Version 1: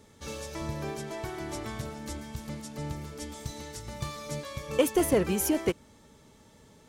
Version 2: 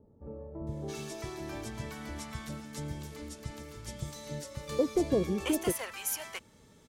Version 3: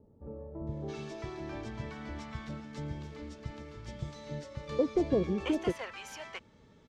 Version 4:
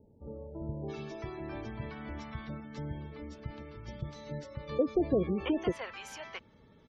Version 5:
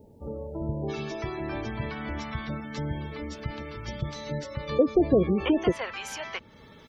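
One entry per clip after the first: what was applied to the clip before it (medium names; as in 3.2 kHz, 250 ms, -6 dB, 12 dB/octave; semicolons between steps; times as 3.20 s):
bands offset in time lows, highs 670 ms, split 780 Hz; trim -2.5 dB
distance through air 160 m
spectral gate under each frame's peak -30 dB strong
tape noise reduction on one side only encoder only; trim +7 dB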